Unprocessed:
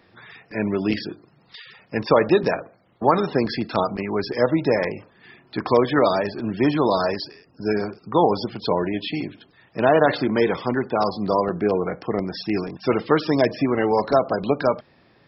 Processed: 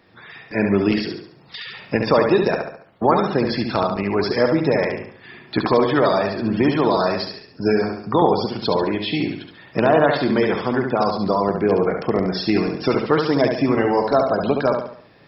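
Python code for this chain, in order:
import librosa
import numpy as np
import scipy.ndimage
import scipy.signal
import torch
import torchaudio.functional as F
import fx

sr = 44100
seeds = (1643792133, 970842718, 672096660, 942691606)

p1 = fx.recorder_agc(x, sr, target_db=-8.5, rise_db_per_s=9.4, max_gain_db=30)
y = p1 + fx.echo_feedback(p1, sr, ms=70, feedback_pct=43, wet_db=-5, dry=0)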